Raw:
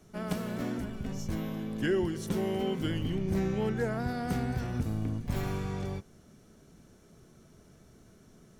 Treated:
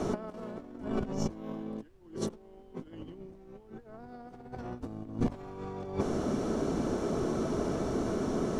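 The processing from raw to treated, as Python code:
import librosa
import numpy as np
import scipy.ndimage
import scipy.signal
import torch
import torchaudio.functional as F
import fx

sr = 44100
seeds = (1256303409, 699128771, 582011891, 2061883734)

y = scipy.signal.sosfilt(scipy.signal.butter(2, 7300.0, 'lowpass', fs=sr, output='sos'), x)
y = fx.band_shelf(y, sr, hz=540.0, db=10.5, octaves=2.7)
y = fx.over_compress(y, sr, threshold_db=-39.0, ratio=-0.5)
y = fx.dmg_noise_colour(y, sr, seeds[0], colour='brown', level_db=-65.0)
y = y * 10.0 ** (5.5 / 20.0)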